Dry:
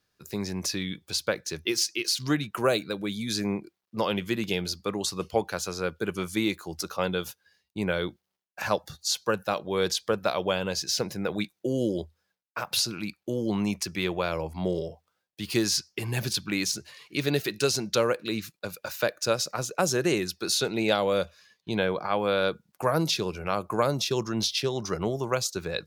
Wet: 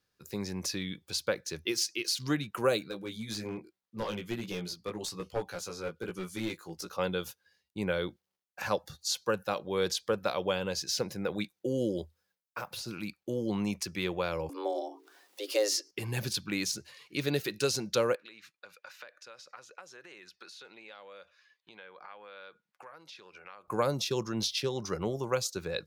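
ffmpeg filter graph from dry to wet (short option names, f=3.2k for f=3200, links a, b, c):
-filter_complex "[0:a]asettb=1/sr,asplit=3[a][b][c];[a]atrim=end=2.884[d];[b]atrim=start=2.88:end=6.93,asetpts=PTS-STARTPTS,afade=t=in:d=0.004:c=qsin,afade=t=out:st=4.046:d=0.004:c=qsin,flanger=delay=16:depth=2.4:speed=1.2,aeval=exprs='clip(val(0),-1,0.0376)':c=same[e];[c]atrim=start=6.926[f];[d][e]acrossfade=d=0.004:c1=hsin:c2=qsin[g];[g][f]acrossfade=d=0.004:c1=qsin:c2=hsin,asettb=1/sr,asplit=3[h][i][j];[h]atrim=end=11.974[k];[i]atrim=start=11.97:end=13.08,asetpts=PTS-STARTPTS,afade=t=in:d=0.004:c=qsin,afade=t=out:st=1.106:d=0.004:c=qsin,highshelf=f=8k:g=6.5,deesser=0.9[l];[j]atrim=start=13.076[m];[k][l]acrossfade=d=0.004:c1=hsin:c2=qsin[n];[n][m]acrossfade=d=0.004:c1=qsin:c2=hsin,asettb=1/sr,asplit=3[o][p][q];[o]atrim=end=14.494[r];[p]atrim=start=14.49:end=15.91,asetpts=PTS-STARTPTS,afade=t=in:d=0.004:c=qsin,afade=t=out:st=1.416:d=0.004:c=qsin,bandreject=f=60:t=h:w=6,bandreject=f=120:t=h:w=6,bandreject=f=180:t=h:w=6,bandreject=f=240:t=h:w=6,afreqshift=200,acompressor=mode=upward:threshold=-34dB:ratio=2.5:attack=3.2:release=140:knee=2.83:detection=peak[s];[q]atrim=start=15.906[t];[r][s]acrossfade=d=0.004:c1=hsin:c2=qsin[u];[u][t]acrossfade=d=0.004:c1=qsin:c2=hsin,asettb=1/sr,asplit=3[v][w][x];[v]atrim=end=18.154[y];[w]atrim=start=18.15:end=23.68,asetpts=PTS-STARTPTS,afade=t=in:d=0.004:c=qsin,afade=t=out:st=5.526:d=0.004:c=qsin,acompressor=threshold=-34dB:ratio=10:attack=3.2:release=140:knee=1:detection=peak,bandpass=f=1.8k:t=q:w=0.9[z];[x]atrim=start=23.676[aa];[y][z]acrossfade=d=0.004:c1=hsin:c2=qsin[ab];[ab][aa]acrossfade=d=0.004:c1=qsin:c2=hsin,equalizer=f=520:w=7.1:g=4,bandreject=f=650:w=12,volume=-4.5dB"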